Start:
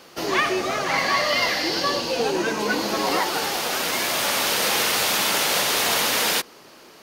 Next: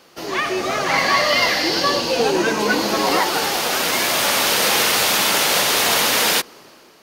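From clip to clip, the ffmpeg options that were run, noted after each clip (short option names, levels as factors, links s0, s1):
-af "dynaudnorm=f=220:g=5:m=3.76,volume=0.708"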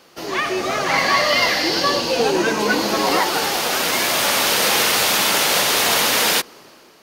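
-af anull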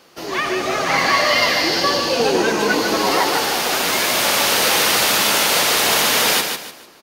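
-af "aecho=1:1:149|298|447|596:0.501|0.155|0.0482|0.0149"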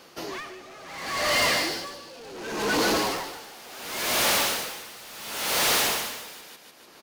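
-af "volume=10,asoftclip=hard,volume=0.1,aeval=exprs='val(0)*pow(10,-22*(0.5-0.5*cos(2*PI*0.7*n/s))/20)':c=same"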